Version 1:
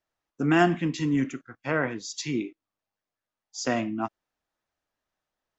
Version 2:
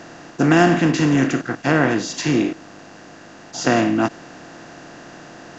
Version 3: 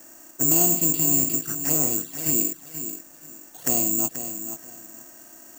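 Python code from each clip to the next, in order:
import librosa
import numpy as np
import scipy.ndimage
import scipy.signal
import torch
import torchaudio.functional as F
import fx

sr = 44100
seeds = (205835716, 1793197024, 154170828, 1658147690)

y1 = fx.bin_compress(x, sr, power=0.4)
y1 = fx.low_shelf(y1, sr, hz=380.0, db=3.5)
y1 = y1 * librosa.db_to_amplitude(3.0)
y2 = fx.env_flanger(y1, sr, rest_ms=4.0, full_db=-15.0)
y2 = fx.echo_feedback(y2, sr, ms=482, feedback_pct=23, wet_db=-10.0)
y2 = (np.kron(scipy.signal.resample_poly(y2, 1, 6), np.eye(6)[0]) * 6)[:len(y2)]
y2 = y2 * librosa.db_to_amplitude(-12.0)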